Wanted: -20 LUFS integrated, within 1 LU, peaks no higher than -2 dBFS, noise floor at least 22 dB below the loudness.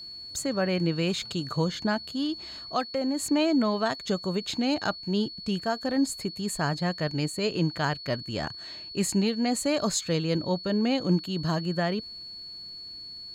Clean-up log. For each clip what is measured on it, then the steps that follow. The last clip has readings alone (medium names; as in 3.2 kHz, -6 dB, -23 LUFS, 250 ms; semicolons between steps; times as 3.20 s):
tick rate 43 per s; steady tone 4.4 kHz; tone level -39 dBFS; loudness -28.0 LUFS; peak level -14.5 dBFS; loudness target -20.0 LUFS
-> de-click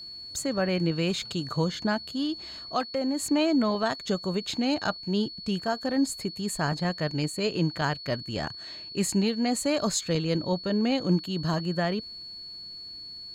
tick rate 0.67 per s; steady tone 4.4 kHz; tone level -39 dBFS
-> band-stop 4.4 kHz, Q 30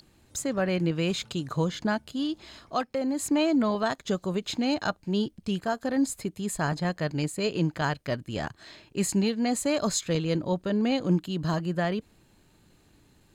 steady tone not found; loudness -28.5 LUFS; peak level -15.0 dBFS; loudness target -20.0 LUFS
-> trim +8.5 dB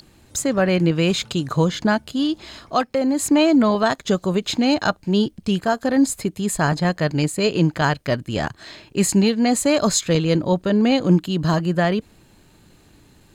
loudness -20.0 LUFS; peak level -6.5 dBFS; noise floor -53 dBFS